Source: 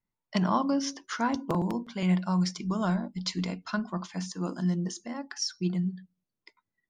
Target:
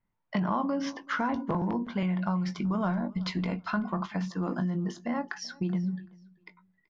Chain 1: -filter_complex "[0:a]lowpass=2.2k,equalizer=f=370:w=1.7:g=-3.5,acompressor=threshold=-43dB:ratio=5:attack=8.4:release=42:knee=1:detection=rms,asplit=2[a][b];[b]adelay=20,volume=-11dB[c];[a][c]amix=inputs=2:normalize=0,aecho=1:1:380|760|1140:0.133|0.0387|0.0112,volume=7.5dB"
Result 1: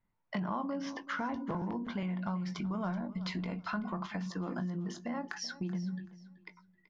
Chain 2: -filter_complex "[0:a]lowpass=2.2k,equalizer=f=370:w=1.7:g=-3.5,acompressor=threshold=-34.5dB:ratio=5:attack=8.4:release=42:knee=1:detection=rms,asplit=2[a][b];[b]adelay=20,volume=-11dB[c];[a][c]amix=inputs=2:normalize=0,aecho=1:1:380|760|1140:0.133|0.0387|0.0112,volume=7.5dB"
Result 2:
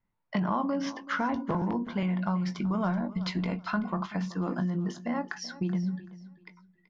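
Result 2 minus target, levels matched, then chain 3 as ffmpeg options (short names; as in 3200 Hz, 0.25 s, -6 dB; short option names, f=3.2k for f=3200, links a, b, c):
echo-to-direct +7 dB
-filter_complex "[0:a]lowpass=2.2k,equalizer=f=370:w=1.7:g=-3.5,acompressor=threshold=-34.5dB:ratio=5:attack=8.4:release=42:knee=1:detection=rms,asplit=2[a][b];[b]adelay=20,volume=-11dB[c];[a][c]amix=inputs=2:normalize=0,aecho=1:1:380|760:0.0596|0.0173,volume=7.5dB"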